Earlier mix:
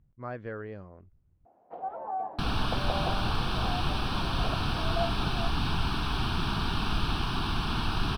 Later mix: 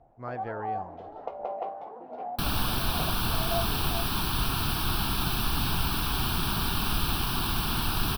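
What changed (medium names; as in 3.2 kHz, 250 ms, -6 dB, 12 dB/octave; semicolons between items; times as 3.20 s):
first sound: entry -1.45 s; master: remove distance through air 110 m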